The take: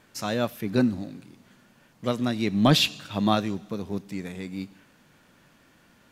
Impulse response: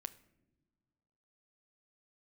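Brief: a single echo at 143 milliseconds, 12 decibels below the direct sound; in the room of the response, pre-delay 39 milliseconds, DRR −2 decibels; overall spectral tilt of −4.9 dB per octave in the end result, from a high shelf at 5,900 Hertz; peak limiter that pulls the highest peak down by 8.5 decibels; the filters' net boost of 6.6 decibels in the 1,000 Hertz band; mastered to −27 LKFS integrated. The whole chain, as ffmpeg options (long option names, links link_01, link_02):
-filter_complex "[0:a]equalizer=frequency=1000:width_type=o:gain=9,highshelf=frequency=5900:gain=4.5,alimiter=limit=-12dB:level=0:latency=1,aecho=1:1:143:0.251,asplit=2[link_01][link_02];[1:a]atrim=start_sample=2205,adelay=39[link_03];[link_02][link_03]afir=irnorm=-1:irlink=0,volume=5.5dB[link_04];[link_01][link_04]amix=inputs=2:normalize=0,volume=-4.5dB"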